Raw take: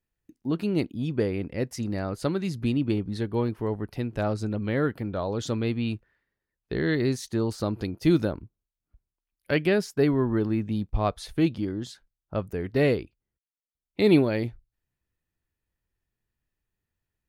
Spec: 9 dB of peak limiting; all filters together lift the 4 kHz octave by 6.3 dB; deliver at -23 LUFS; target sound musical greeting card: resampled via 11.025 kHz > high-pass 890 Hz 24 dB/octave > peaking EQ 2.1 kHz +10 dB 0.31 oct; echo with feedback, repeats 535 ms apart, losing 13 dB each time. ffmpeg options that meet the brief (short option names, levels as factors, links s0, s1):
-af "equalizer=f=4000:t=o:g=7,alimiter=limit=0.15:level=0:latency=1,aecho=1:1:535|1070|1605:0.224|0.0493|0.0108,aresample=11025,aresample=44100,highpass=f=890:w=0.5412,highpass=f=890:w=1.3066,equalizer=f=2100:t=o:w=0.31:g=10,volume=4.22"